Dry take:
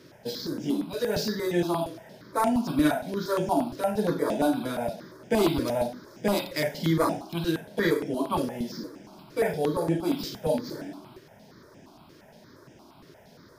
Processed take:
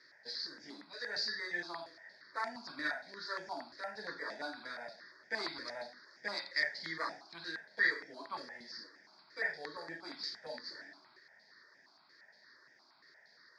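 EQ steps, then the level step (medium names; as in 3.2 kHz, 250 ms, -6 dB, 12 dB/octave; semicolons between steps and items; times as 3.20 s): two resonant band-passes 2.9 kHz, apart 1.3 oct; distance through air 93 m; +5.5 dB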